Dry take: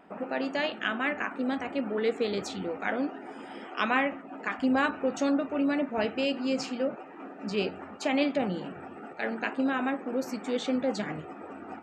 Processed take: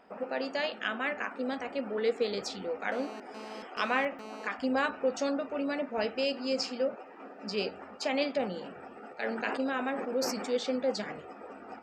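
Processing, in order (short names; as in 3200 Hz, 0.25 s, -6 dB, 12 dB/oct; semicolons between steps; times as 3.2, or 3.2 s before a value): thirty-one-band EQ 100 Hz -11 dB, 160 Hz -10 dB, 315 Hz -8 dB, 500 Hz +5 dB, 5000 Hz +11 dB; 2.92–4.47 GSM buzz -42 dBFS; 9.21–10.5 sustainer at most 39 dB/s; gain -3 dB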